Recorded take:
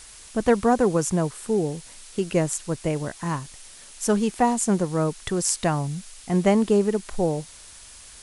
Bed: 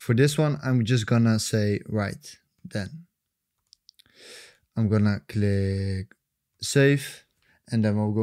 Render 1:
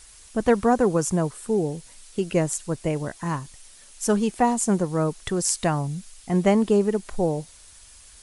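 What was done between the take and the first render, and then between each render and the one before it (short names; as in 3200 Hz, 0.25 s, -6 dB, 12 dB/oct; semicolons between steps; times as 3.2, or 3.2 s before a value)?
denoiser 6 dB, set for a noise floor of -46 dBFS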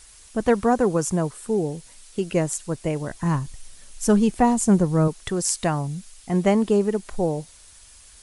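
3.1–5.08 low shelf 180 Hz +12 dB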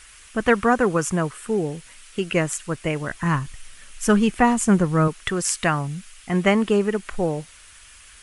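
band shelf 1900 Hz +9.5 dB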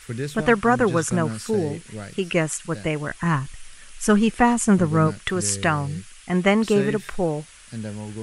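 add bed -9 dB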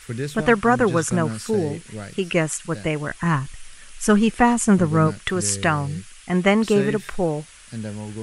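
gain +1 dB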